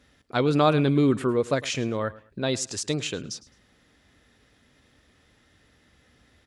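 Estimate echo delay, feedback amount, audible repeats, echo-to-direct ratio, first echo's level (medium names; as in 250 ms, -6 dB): 106 ms, 25%, 2, -19.0 dB, -19.5 dB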